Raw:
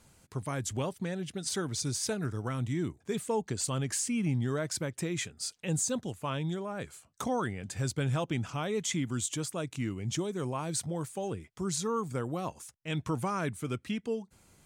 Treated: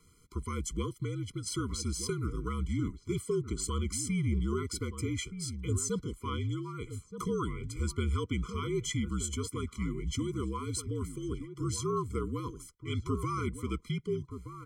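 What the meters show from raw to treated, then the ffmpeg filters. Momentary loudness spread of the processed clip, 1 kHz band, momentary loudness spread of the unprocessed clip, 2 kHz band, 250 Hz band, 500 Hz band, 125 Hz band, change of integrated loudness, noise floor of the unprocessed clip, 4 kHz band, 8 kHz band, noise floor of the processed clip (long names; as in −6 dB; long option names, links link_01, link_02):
6 LU, −3.0 dB, 6 LU, −4.5 dB, −1.0 dB, −2.0 dB, +0.5 dB, −1.0 dB, −66 dBFS, −2.5 dB, −3.5 dB, −60 dBFS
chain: -filter_complex "[0:a]afreqshift=-54,asplit=2[link_01][link_02];[link_02]adelay=1224,volume=-10dB,highshelf=frequency=4000:gain=-27.6[link_03];[link_01][link_03]amix=inputs=2:normalize=0,afftfilt=real='re*eq(mod(floor(b*sr/1024/490),2),0)':imag='im*eq(mod(floor(b*sr/1024/490),2),0)':win_size=1024:overlap=0.75"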